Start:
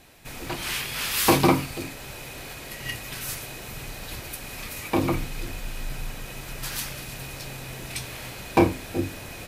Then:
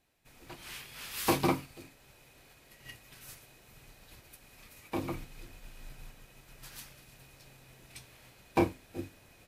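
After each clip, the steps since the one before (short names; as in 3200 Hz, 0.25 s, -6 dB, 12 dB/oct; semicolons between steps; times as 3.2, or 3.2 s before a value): upward expander 1.5:1, over -42 dBFS; gain -8 dB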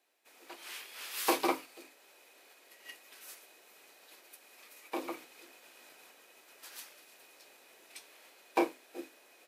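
HPF 340 Hz 24 dB/oct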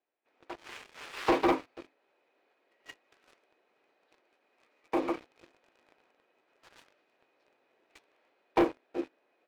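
tape spacing loss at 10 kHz 37 dB; sample leveller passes 3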